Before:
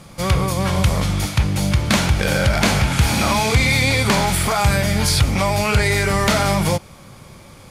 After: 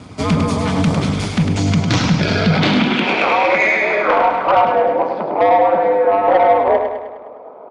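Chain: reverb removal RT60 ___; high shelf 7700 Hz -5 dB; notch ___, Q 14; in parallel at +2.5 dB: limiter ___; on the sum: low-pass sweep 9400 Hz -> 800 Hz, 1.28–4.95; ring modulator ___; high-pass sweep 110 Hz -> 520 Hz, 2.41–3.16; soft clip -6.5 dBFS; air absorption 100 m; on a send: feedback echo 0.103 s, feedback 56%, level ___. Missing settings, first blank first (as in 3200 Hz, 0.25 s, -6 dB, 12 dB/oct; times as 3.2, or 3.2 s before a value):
0.67 s, 1700 Hz, -13 dBFS, 100 Hz, -6 dB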